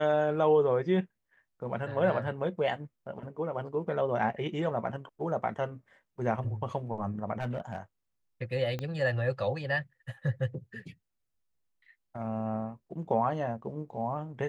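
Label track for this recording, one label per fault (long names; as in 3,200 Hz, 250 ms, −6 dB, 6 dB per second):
7.400000	7.780000	clipping −28.5 dBFS
8.790000	8.790000	click −22 dBFS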